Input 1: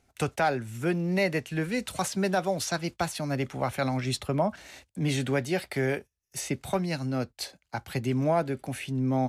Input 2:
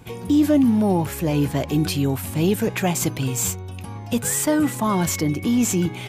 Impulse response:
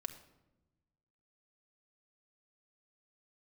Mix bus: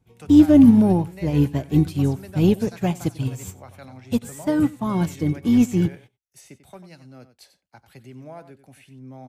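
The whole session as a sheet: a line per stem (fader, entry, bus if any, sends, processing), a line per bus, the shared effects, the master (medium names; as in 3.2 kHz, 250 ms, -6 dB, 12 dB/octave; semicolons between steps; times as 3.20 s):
-15.0 dB, 0.00 s, no send, echo send -12.5 dB, treble shelf 10 kHz +4 dB
+1.5 dB, 0.00 s, no send, echo send -22 dB, bass shelf 350 Hz +9 dB; upward expansion 2.5:1, over -28 dBFS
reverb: none
echo: delay 93 ms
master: none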